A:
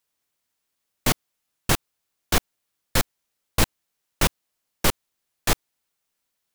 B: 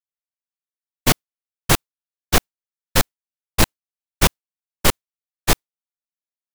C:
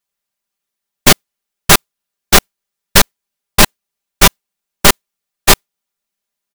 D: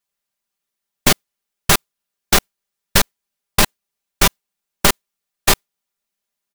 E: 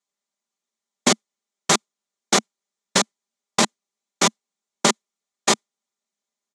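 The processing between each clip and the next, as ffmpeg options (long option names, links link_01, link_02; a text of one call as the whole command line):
ffmpeg -i in.wav -af "asoftclip=type=hard:threshold=-14.5dB,agate=range=-33dB:threshold=-20dB:ratio=3:detection=peak,volume=7dB" out.wav
ffmpeg -i in.wav -af "aecho=1:1:5:0.73,apsyclip=15dB,volume=-1.5dB" out.wav
ffmpeg -i in.wav -af "acompressor=threshold=-9dB:ratio=6,volume=-1.5dB" out.wav
ffmpeg -i in.wav -af "highpass=frequency=190:width=0.5412,highpass=frequency=190:width=1.3066,equalizer=frequency=220:width_type=q:width=4:gain=4,equalizer=frequency=1600:width_type=q:width=4:gain=-6,equalizer=frequency=2700:width_type=q:width=4:gain=-7,equalizer=frequency=4800:width_type=q:width=4:gain=-3,equalizer=frequency=6900:width_type=q:width=4:gain=4,lowpass=frequency=7800:width=0.5412,lowpass=frequency=7800:width=1.3066,volume=-1dB" out.wav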